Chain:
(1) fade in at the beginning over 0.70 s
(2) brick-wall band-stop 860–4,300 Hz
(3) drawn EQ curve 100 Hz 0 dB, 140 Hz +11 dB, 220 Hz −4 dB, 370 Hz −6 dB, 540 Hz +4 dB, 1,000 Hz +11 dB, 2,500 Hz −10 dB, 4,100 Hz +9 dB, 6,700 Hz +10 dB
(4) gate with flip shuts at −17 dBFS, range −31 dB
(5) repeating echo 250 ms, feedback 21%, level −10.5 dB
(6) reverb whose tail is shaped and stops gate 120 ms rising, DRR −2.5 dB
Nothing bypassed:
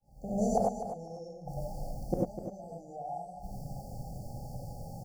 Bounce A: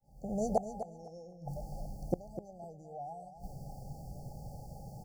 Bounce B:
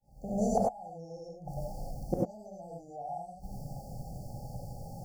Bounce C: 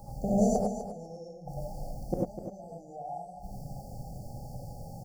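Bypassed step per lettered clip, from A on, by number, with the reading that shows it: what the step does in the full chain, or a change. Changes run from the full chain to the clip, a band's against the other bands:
6, change in integrated loudness −4.5 LU
5, change in momentary loudness spread +1 LU
1, 1 kHz band −3.0 dB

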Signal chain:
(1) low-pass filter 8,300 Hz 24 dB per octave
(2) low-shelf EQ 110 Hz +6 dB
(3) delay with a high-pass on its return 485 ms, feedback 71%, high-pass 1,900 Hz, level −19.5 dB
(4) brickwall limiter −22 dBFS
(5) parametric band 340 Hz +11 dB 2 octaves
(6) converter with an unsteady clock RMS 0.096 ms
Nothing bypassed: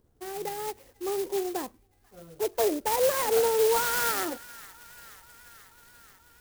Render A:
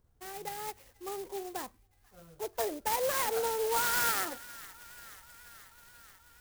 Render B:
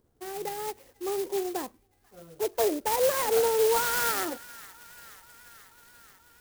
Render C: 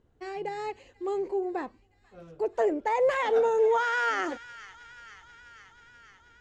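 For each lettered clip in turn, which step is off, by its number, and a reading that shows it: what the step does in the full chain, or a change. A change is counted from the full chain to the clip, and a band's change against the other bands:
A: 5, 250 Hz band −6.5 dB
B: 2, change in momentary loudness spread +1 LU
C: 6, 4 kHz band −8.5 dB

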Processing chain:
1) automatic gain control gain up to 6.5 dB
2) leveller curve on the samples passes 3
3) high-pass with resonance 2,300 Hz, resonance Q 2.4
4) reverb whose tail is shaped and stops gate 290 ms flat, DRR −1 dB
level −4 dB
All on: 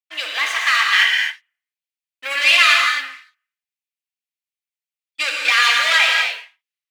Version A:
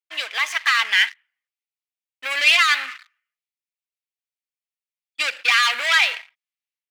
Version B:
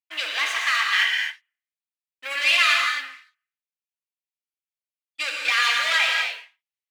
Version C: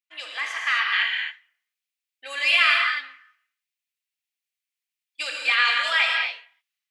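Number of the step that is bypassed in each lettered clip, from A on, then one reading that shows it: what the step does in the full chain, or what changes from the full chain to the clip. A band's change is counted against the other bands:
4, change in momentary loudness spread +2 LU
1, change in integrated loudness −5.5 LU
2, change in crest factor +2.0 dB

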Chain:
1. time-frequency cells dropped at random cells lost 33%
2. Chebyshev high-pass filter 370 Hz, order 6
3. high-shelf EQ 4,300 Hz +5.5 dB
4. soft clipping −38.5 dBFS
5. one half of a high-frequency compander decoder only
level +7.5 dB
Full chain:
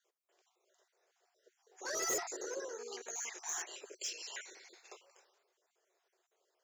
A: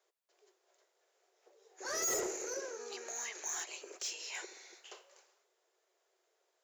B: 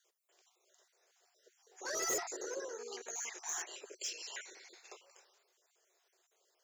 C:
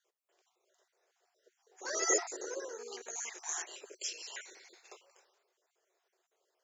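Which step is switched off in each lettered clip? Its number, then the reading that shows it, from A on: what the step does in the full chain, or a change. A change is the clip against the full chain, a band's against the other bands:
1, 250 Hz band +2.0 dB
5, change in momentary loudness spread −1 LU
4, distortion level −9 dB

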